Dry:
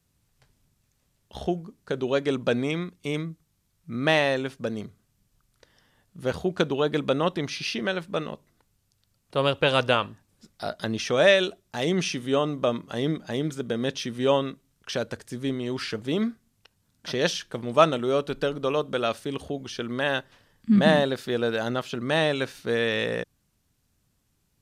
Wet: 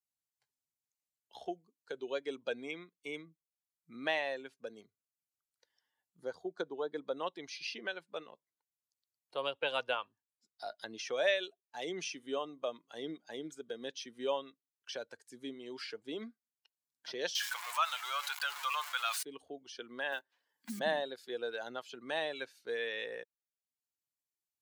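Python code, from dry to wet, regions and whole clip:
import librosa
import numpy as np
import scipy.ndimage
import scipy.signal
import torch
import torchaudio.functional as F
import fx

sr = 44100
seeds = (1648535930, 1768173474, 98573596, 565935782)

y = fx.chain(x, sr, fx.lowpass(hz=3900.0, slope=6),
    fx.peak_eq(hz=2700.0, db=-14.0, octaves=0.45), at=(6.2, 7.17))
y = fx.chain(y, sr, fx.zero_step(step_db=-30.0),
    fx.highpass(hz=950.0, slope=24),
    fx.env_flatten(amount_pct=50), at=(17.35, 19.23))
y = fx.chain(y, sr, fx.block_float(bits=5),
    fx.highpass(hz=190.0, slope=12),
    fx.band_squash(depth_pct=70), at=(20.12, 20.8))
y = fx.bin_expand(y, sr, power=1.5)
y = scipy.signal.sosfilt(scipy.signal.butter(2, 480.0, 'highpass', fs=sr, output='sos'), y)
y = fx.band_squash(y, sr, depth_pct=40)
y = F.gain(torch.from_numpy(y), -6.5).numpy()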